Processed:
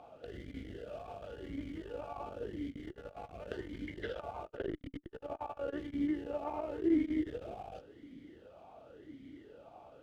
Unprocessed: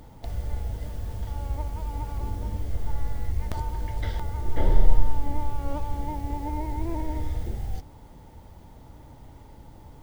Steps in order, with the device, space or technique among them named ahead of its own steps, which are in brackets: talk box (valve stage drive 25 dB, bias 0.6; talking filter a-i 0.92 Hz); trim +13 dB

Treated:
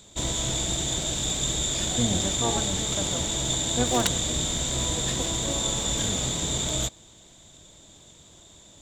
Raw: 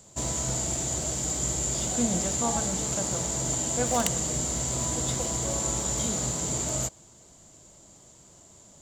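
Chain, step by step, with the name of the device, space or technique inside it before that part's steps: octave pedal (harmony voices -12 st -2 dB)

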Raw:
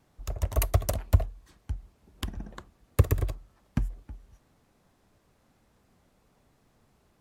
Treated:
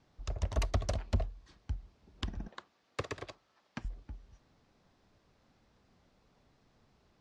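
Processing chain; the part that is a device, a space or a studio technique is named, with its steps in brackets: 2.48–3.85 s: frequency weighting A; overdriven synthesiser ladder filter (saturation -19.5 dBFS, distortion -8 dB; four-pole ladder low-pass 6.4 kHz, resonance 30%); trim +4 dB

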